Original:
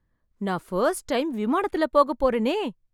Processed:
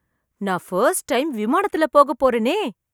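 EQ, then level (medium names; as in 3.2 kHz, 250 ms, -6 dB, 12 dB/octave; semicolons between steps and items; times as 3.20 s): high-pass 53 Hz; tilt EQ +1.5 dB/octave; peaking EQ 4.3 kHz -8.5 dB 0.67 oct; +6.0 dB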